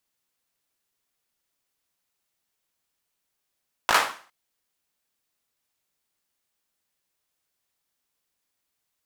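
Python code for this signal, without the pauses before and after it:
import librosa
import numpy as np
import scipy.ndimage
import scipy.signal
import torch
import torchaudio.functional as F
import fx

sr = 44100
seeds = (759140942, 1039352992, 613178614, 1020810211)

y = fx.drum_clap(sr, seeds[0], length_s=0.41, bursts=4, spacing_ms=18, hz=1100.0, decay_s=0.43)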